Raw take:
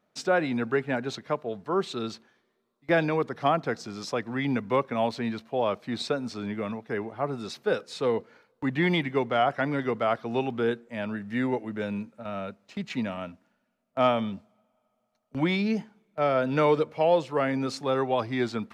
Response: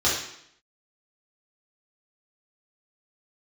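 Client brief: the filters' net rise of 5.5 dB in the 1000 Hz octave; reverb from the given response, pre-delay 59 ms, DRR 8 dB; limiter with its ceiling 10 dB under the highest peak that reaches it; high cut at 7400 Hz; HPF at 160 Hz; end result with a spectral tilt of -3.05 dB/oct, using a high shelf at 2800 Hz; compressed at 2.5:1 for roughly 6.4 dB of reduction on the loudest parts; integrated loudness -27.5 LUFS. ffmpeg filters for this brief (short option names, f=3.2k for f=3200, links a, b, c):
-filter_complex "[0:a]highpass=160,lowpass=7.4k,equalizer=f=1k:t=o:g=6.5,highshelf=f=2.8k:g=7.5,acompressor=threshold=-24dB:ratio=2.5,alimiter=limit=-21.5dB:level=0:latency=1,asplit=2[a][b];[1:a]atrim=start_sample=2205,adelay=59[c];[b][c]afir=irnorm=-1:irlink=0,volume=-23dB[d];[a][d]amix=inputs=2:normalize=0,volume=4dB"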